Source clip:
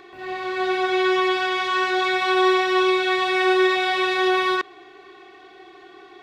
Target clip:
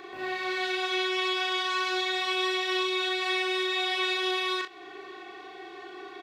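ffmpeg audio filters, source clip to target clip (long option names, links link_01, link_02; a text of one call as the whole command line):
ffmpeg -i in.wav -filter_complex "[0:a]lowshelf=frequency=110:gain=-10,acrossover=split=2100[link_01][link_02];[link_01]acompressor=threshold=-34dB:ratio=6[link_03];[link_02]alimiter=level_in=1dB:limit=-24dB:level=0:latency=1:release=404,volume=-1dB[link_04];[link_03][link_04]amix=inputs=2:normalize=0,aecho=1:1:38|63:0.631|0.224,volume=1dB" out.wav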